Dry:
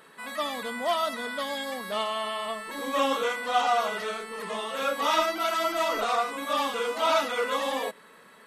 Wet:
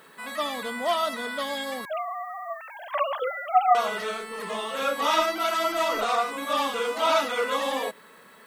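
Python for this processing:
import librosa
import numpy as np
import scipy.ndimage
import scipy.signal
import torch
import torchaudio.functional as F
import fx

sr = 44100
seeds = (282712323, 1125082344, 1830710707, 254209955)

y = fx.sine_speech(x, sr, at=(1.85, 3.75))
y = fx.dmg_noise_colour(y, sr, seeds[0], colour='violet', level_db=-67.0)
y = y * librosa.db_to_amplitude(1.5)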